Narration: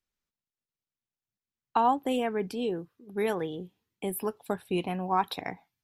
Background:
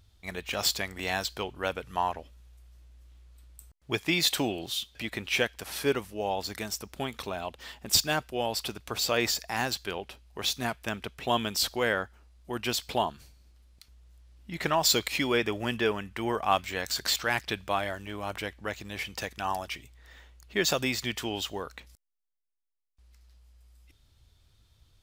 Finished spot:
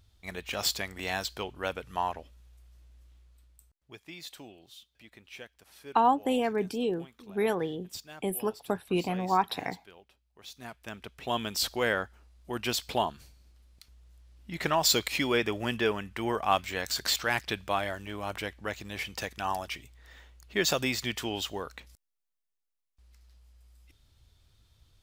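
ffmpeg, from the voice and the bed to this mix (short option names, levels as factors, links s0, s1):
-filter_complex "[0:a]adelay=4200,volume=1.12[s0];[1:a]volume=6.68,afade=t=out:st=2.99:d=0.95:silence=0.141254,afade=t=in:st=10.45:d=1.39:silence=0.11885[s1];[s0][s1]amix=inputs=2:normalize=0"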